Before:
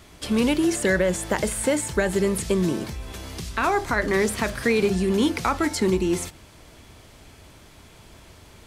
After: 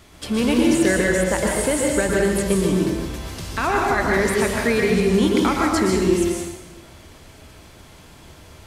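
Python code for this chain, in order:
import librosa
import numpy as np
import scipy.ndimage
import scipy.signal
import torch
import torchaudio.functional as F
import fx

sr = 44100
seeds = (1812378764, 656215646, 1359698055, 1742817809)

y = fx.rev_plate(x, sr, seeds[0], rt60_s=1.1, hf_ratio=0.85, predelay_ms=105, drr_db=-1.5)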